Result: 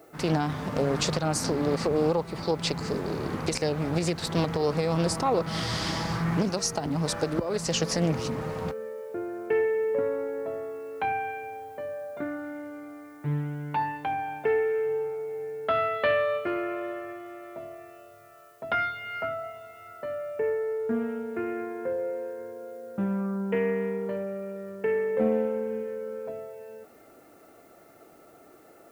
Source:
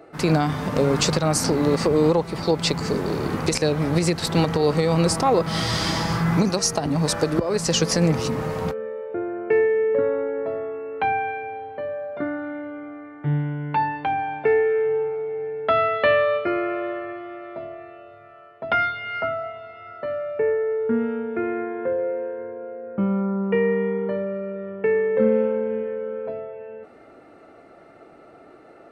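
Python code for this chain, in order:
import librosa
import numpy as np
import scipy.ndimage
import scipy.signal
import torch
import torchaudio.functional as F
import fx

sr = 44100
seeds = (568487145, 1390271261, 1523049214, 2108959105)

y = fx.dmg_noise_colour(x, sr, seeds[0], colour='blue', level_db=-58.0)
y = fx.doppler_dist(y, sr, depth_ms=0.29)
y = y * 10.0 ** (-6.0 / 20.0)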